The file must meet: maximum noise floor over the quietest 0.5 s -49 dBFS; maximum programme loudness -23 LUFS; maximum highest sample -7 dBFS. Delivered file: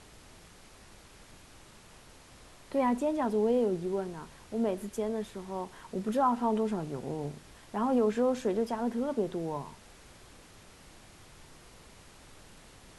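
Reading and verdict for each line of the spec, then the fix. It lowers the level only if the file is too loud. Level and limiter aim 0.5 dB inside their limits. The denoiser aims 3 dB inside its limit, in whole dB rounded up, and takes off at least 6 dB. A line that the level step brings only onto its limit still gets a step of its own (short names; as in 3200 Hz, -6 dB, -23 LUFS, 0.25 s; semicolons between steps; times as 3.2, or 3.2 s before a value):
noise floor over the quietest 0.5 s -54 dBFS: OK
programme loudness -31.5 LUFS: OK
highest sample -17.5 dBFS: OK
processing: none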